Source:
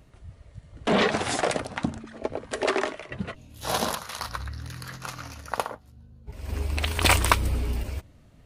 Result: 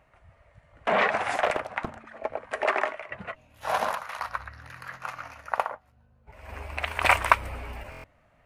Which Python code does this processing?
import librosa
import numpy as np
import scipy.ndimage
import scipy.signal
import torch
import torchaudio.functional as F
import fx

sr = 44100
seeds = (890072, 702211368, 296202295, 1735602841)

y = fx.band_shelf(x, sr, hz=1200.0, db=14.5, octaves=2.6)
y = fx.buffer_glitch(y, sr, at_s=(7.9,), block=1024, repeats=5)
y = fx.doppler_dist(y, sr, depth_ms=0.95, at=(1.35, 2.0))
y = F.gain(torch.from_numpy(y), -12.0).numpy()